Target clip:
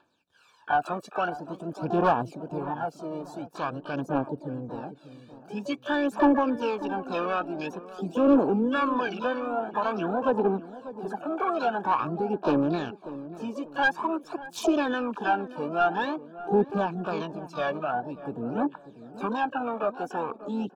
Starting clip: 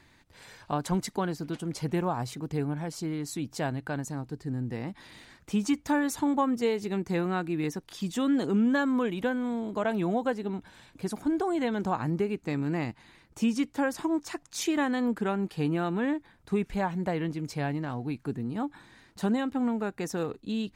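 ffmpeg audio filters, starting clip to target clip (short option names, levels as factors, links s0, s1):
-filter_complex "[0:a]highpass=f=380:p=1,afwtdn=0.01,asplit=2[s0][s1];[s1]alimiter=level_in=1.68:limit=0.0631:level=0:latency=1:release=30,volume=0.596,volume=0.841[s2];[s0][s2]amix=inputs=2:normalize=0,aphaser=in_gain=1:out_gain=1:delay=1.8:decay=0.73:speed=0.48:type=triangular,aeval=exprs='clip(val(0),-1,0.237)':c=same,asplit=3[s3][s4][s5];[s4]asetrate=52444,aresample=44100,atempo=0.840896,volume=0.141[s6];[s5]asetrate=88200,aresample=44100,atempo=0.5,volume=0.316[s7];[s3][s6][s7]amix=inputs=3:normalize=0,asplit=2[s8][s9];[s9]highpass=f=720:p=1,volume=7.08,asoftclip=type=tanh:threshold=0.708[s10];[s8][s10]amix=inputs=2:normalize=0,lowpass=f=1400:p=1,volume=0.501,asuperstop=centerf=2000:order=8:qfactor=3.5,asplit=2[s11][s12];[s12]adelay=591,lowpass=f=860:p=1,volume=0.211,asplit=2[s13][s14];[s14]adelay=591,lowpass=f=860:p=1,volume=0.41,asplit=2[s15][s16];[s16]adelay=591,lowpass=f=860:p=1,volume=0.41,asplit=2[s17][s18];[s18]adelay=591,lowpass=f=860:p=1,volume=0.41[s19];[s11][s13][s15][s17][s19]amix=inputs=5:normalize=0,volume=0.531"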